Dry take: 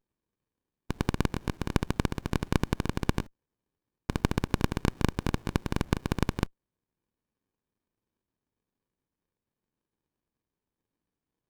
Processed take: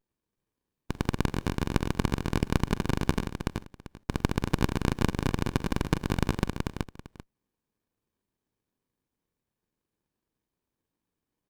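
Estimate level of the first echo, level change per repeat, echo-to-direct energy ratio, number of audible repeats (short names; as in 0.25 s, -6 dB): -16.0 dB, no steady repeat, -3.5 dB, 3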